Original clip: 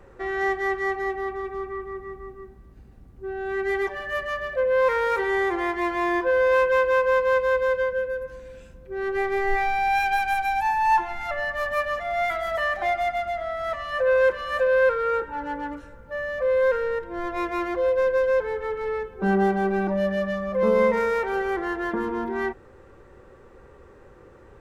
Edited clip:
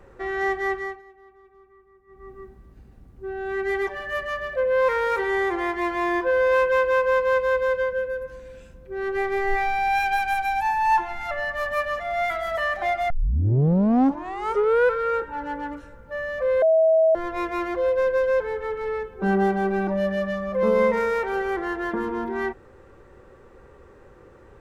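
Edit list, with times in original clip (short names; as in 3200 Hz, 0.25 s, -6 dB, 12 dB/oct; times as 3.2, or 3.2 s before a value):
0.71–2.38 dip -22 dB, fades 0.31 s
13.1 tape start 1.86 s
16.62–17.15 bleep 644 Hz -14 dBFS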